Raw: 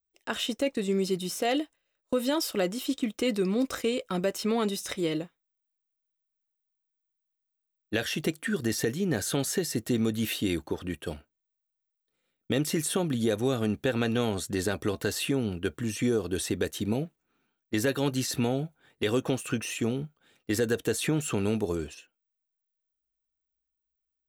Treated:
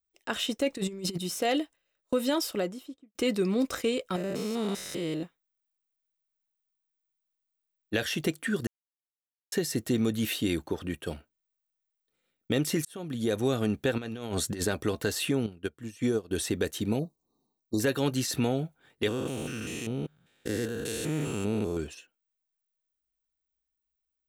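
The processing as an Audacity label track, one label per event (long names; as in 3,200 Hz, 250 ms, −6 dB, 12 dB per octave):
0.700000	1.180000	compressor whose output falls as the input rises −32 dBFS, ratio −0.5
2.350000	3.150000	fade out and dull
4.160000	5.230000	spectrum averaged block by block every 200 ms
8.670000	9.520000	silence
12.850000	13.380000	fade in
13.980000	14.650000	compressor whose output falls as the input rises −32 dBFS, ratio −0.5
15.460000	16.310000	expander for the loud parts 2.5 to 1, over −34 dBFS
16.990000	17.800000	linear-phase brick-wall band-stop 1,200–3,700 Hz
19.080000	21.770000	spectrum averaged block by block every 200 ms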